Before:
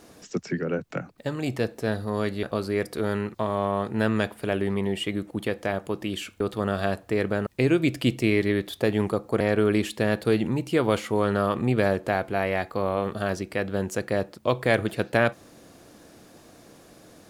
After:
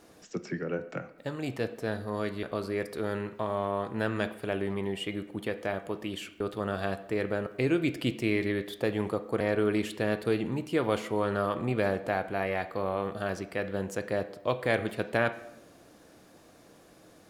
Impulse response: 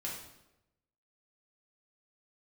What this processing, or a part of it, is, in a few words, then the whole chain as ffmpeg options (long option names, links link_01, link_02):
filtered reverb send: -filter_complex "[0:a]asplit=2[link_01][link_02];[link_02]highpass=270,lowpass=4000[link_03];[1:a]atrim=start_sample=2205[link_04];[link_03][link_04]afir=irnorm=-1:irlink=0,volume=-8dB[link_05];[link_01][link_05]amix=inputs=2:normalize=0,volume=-6.5dB"